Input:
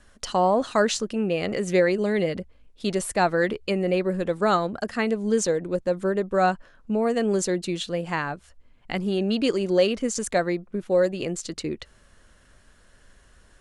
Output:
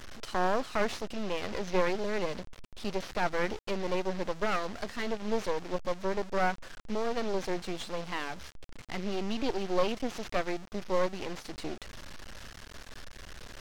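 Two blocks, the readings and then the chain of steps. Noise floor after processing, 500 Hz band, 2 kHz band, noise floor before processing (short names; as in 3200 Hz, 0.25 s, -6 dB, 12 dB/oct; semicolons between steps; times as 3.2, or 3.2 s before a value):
-51 dBFS, -9.5 dB, -6.5 dB, -56 dBFS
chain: delta modulation 32 kbps, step -31 dBFS; half-wave rectifier; gain -3.5 dB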